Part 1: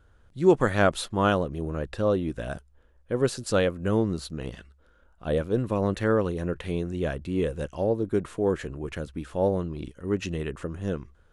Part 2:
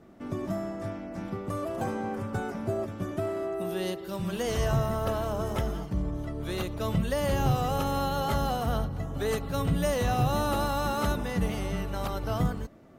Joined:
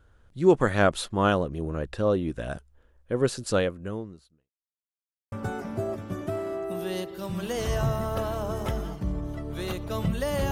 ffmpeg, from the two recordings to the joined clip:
-filter_complex "[0:a]apad=whole_dur=10.51,atrim=end=10.51,asplit=2[s0][s1];[s0]atrim=end=4.51,asetpts=PTS-STARTPTS,afade=t=out:st=3.52:d=0.99:c=qua[s2];[s1]atrim=start=4.51:end=5.32,asetpts=PTS-STARTPTS,volume=0[s3];[1:a]atrim=start=2.22:end=7.41,asetpts=PTS-STARTPTS,afade=t=in:d=0.004:c=hsin[s4];[s2][s3][s4]concat=n=3:v=0:a=1"

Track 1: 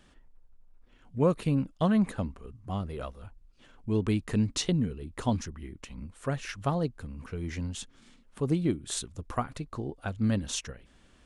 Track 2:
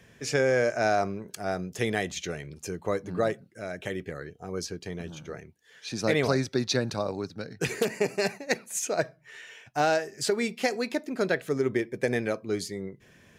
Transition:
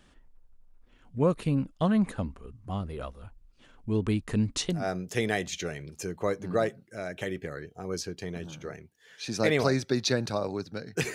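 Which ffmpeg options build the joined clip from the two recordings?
-filter_complex "[0:a]apad=whole_dur=11.14,atrim=end=11.14,atrim=end=4.89,asetpts=PTS-STARTPTS[s0];[1:a]atrim=start=1.29:end=7.78,asetpts=PTS-STARTPTS[s1];[s0][s1]acrossfade=d=0.24:c1=tri:c2=tri"

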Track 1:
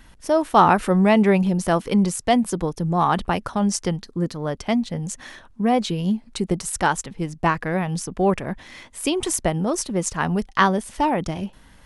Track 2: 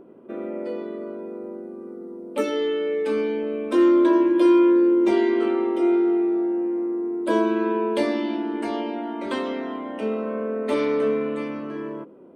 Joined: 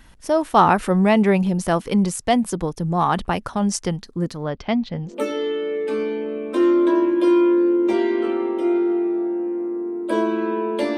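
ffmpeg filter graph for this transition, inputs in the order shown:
-filter_complex "[0:a]asettb=1/sr,asplit=3[s0][s1][s2];[s0]atrim=end=4.434[s3];[s1]atrim=start=4.43:end=5.16,asetpts=PTS-STARTPTS,afade=t=in:d=0.004:c=qsin,afade=t=out:st=0.726:d=0.004:c=qsin,lowpass=f=4700:w=0.5412,lowpass=f=4700:w=1.3066[s4];[s2]atrim=start=5.156[s5];[s3][s4]acrossfade=d=0.004:c1=hsin:c2=qsin[s6];[s6][s5]acrossfade=d=0.004:c1=qsin:c2=hsin,apad=whole_dur=10.97,atrim=end=10.97,atrim=end=5.16,asetpts=PTS-STARTPTS[s7];[1:a]atrim=start=2.2:end=8.15,asetpts=PTS-STARTPTS[s8];[s7][s8]acrossfade=d=0.14:c1=tri:c2=tri"

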